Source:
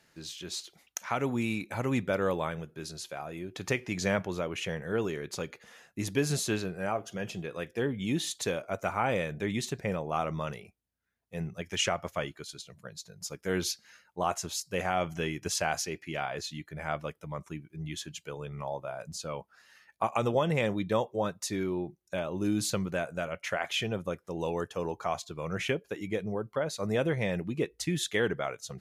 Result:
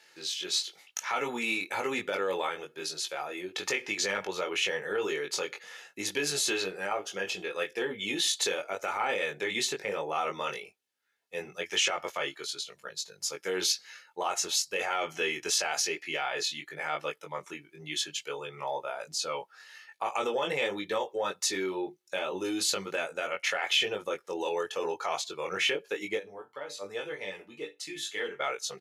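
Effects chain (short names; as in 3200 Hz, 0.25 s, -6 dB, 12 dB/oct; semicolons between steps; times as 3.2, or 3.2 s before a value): added harmonics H 4 -43 dB, 5 -36 dB, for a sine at -14.5 dBFS; 26.17–28.4 resonator bank G2 minor, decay 0.2 s; chorus 1 Hz, delay 19.5 ms, depth 2.2 ms; comb 2.3 ms, depth 36%; limiter -26 dBFS, peak gain reduction 9.5 dB; HPF 350 Hz 12 dB/oct; bell 3400 Hz +7 dB 2.3 oct; gain +4.5 dB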